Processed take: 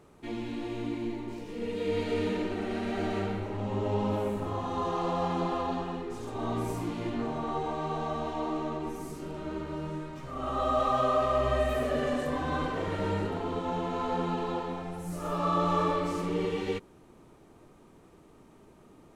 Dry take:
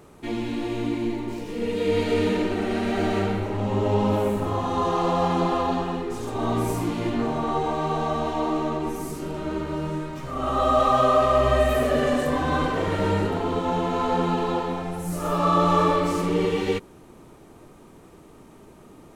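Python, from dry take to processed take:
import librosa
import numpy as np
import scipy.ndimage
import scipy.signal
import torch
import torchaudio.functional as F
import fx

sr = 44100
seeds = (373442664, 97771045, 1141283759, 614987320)

y = fx.high_shelf(x, sr, hz=11000.0, db=-7.5)
y = F.gain(torch.from_numpy(y), -7.5).numpy()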